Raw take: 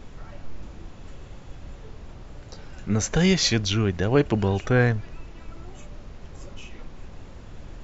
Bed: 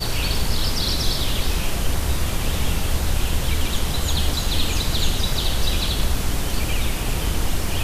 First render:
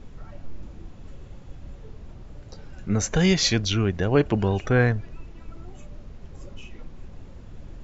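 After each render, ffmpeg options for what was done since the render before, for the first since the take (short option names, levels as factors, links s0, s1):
-af "afftdn=nr=6:nf=-43"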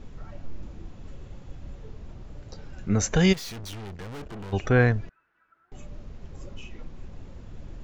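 -filter_complex "[0:a]asplit=3[s0][s1][s2];[s0]afade=t=out:st=3.32:d=0.02[s3];[s1]aeval=exprs='(tanh(70.8*val(0)+0.55)-tanh(0.55))/70.8':c=same,afade=t=in:st=3.32:d=0.02,afade=t=out:st=4.52:d=0.02[s4];[s2]afade=t=in:st=4.52:d=0.02[s5];[s3][s4][s5]amix=inputs=3:normalize=0,asettb=1/sr,asplit=3[s6][s7][s8];[s6]atrim=end=5.094[s9];[s7]atrim=start=5.09:end=5.72,asetpts=PTS-STARTPTS,afade=t=in:d=0.004:c=qsin,afade=t=out:st=0.626:d=0.004:c=qsin,bandpass=f=1500:t=q:w=8.5[s10];[s8]atrim=start=5.716[s11];[s9][s10]acrossfade=d=0.004:c1=hsin:c2=qsin[s12];[s12][s11]acrossfade=d=0.004:c1=qsin:c2=hsin"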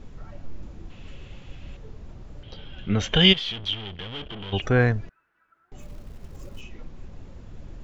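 -filter_complex "[0:a]asettb=1/sr,asplit=3[s0][s1][s2];[s0]atrim=end=0.904[s3];[s1]atrim=start=0.9:end=1.77,asetpts=PTS-STARTPTS,afade=t=in:d=0.004:c=qsin,afade=t=out:st=0.866:d=0.004:c=qsin,equalizer=f=2800:w=1.3:g=13.5[s4];[s2]atrim=start=1.766[s5];[s3][s4]acrossfade=d=0.004:c1=hsin:c2=qsin[s6];[s6][s5]acrossfade=d=0.004:c1=qsin:c2=hsin,asettb=1/sr,asplit=3[s7][s8][s9];[s7]atrim=end=2.434[s10];[s8]atrim=start=2.43:end=4.62,asetpts=PTS-STARTPTS,afade=t=in:d=0.004:c=qsin,afade=t=out:st=2.186:d=0.004:c=qsin,lowpass=f=3200:t=q:w=15[s11];[s9]atrim=start=4.616[s12];[s10][s11]acrossfade=d=0.004:c1=hsin:c2=qsin[s13];[s13][s12]acrossfade=d=0.004:c1=qsin:c2=hsin,asettb=1/sr,asplit=3[s14][s15][s16];[s14]atrim=end=5.784[s17];[s15]atrim=start=5.78:end=6.61,asetpts=PTS-STARTPTS,afade=t=in:d=0.004:c=qsin,afade=t=out:st=0.826:d=0.004:c=qsin,acrusher=bits=6:mode=log:mix=0:aa=0.000001[s18];[s16]atrim=start=6.606[s19];[s17][s18]acrossfade=d=0.004:c1=hsin:c2=qsin[s20];[s20][s19]acrossfade=d=0.004:c1=qsin:c2=hsin"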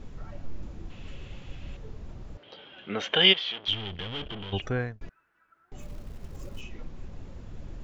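-filter_complex "[0:a]asettb=1/sr,asplit=3[s0][s1][s2];[s0]atrim=end=2.374[s3];[s1]atrim=start=2.37:end=3.68,asetpts=PTS-STARTPTS,afade=t=in:d=0.004:c=qsin,afade=t=out:st=1.306:d=0.004:c=qsin,highpass=390,lowpass=3800[s4];[s2]atrim=start=3.676[s5];[s3][s4]acrossfade=d=0.004:c1=hsin:c2=qsin[s6];[s6][s5]acrossfade=d=0.004:c1=qsin:c2=hsin,asplit=2[s7][s8];[s7]atrim=end=5.01,asetpts=PTS-STARTPTS,afade=t=out:st=4.27:d=0.74[s9];[s8]atrim=start=5.01,asetpts=PTS-STARTPTS,afade=t=in:d=0.004:c=hsin[s10];[s9][s10]concat=n=2:v=0:a=1"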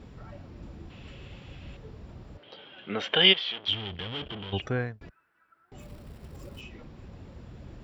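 -af "highpass=57,bandreject=f=6400:w=5.1"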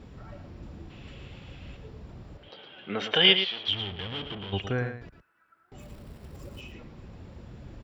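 -af "aecho=1:1:112:0.355"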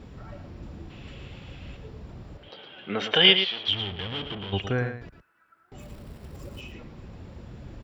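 -af "volume=1.33,alimiter=limit=0.708:level=0:latency=1"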